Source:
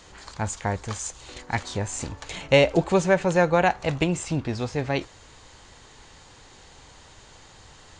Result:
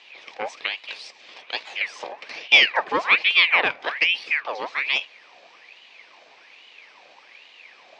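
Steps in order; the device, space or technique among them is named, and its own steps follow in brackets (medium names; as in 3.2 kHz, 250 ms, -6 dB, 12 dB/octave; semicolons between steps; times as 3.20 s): 0.66–1.81 s: bass shelf 340 Hz -10.5 dB; voice changer toy (ring modulator with a swept carrier 1.8 kHz, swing 65%, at 1.2 Hz; cabinet simulation 430–4600 Hz, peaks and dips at 500 Hz +3 dB, 1.4 kHz -8 dB, 2.4 kHz +7 dB); trim +2.5 dB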